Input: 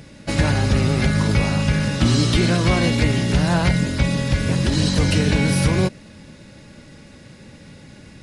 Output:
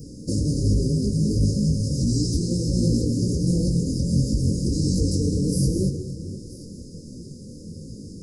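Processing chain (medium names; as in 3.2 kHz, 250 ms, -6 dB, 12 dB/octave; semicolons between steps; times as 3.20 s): Chebyshev band-stop 500–4900 Hz, order 5; 1.75–2.85 s: dynamic bell 400 Hz, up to -4 dB, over -30 dBFS, Q 0.98; in parallel at -0.5 dB: compression, threshold -32 dBFS, peak gain reduction 17.5 dB; on the sum: peak limiter -13.5 dBFS, peak gain reduction 7 dB; on a send: echo whose repeats swap between lows and highs 489 ms, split 810 Hz, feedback 52%, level -13 dB; on the sum: gated-style reverb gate 250 ms rising, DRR 8.5 dB; detune thickener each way 48 cents; trim +2.5 dB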